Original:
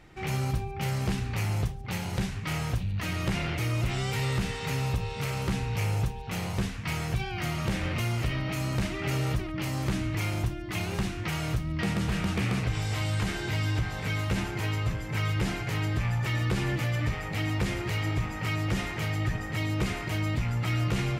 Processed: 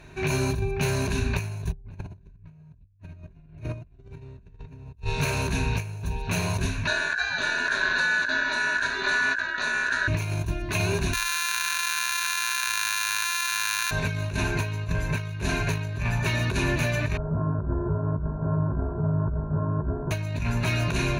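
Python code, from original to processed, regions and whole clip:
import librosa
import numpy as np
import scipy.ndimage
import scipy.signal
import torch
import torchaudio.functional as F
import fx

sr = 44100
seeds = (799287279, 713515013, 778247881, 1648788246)

y = fx.chain(x, sr, fx.tilt_eq(slope=-4.5),
    fx.hum_notches(base_hz=60, count=9), at=(1.72, 4.97))
y = fx.chain(y, sr, fx.lowpass(hz=6800.0, slope=24),
    fx.ring_mod(carrier_hz=1600.0), at=(6.87, 10.08))
y = fx.chain(y, sr, fx.sample_sort(block=128),
    fx.cheby2_highpass(hz=630.0, order=4, stop_db=40),
    fx.env_flatten(amount_pct=100), at=(11.13, 13.91))
y = fx.chain(y, sr, fx.sample_sort(block=32),
    fx.bessel_lowpass(hz=690.0, order=8),
    fx.doubler(ms=14.0, db=-4), at=(17.17, 20.11))
y = fx.ripple_eq(y, sr, per_octave=1.5, db=13)
y = fx.over_compress(y, sr, threshold_db=-28.0, ratio=-0.5)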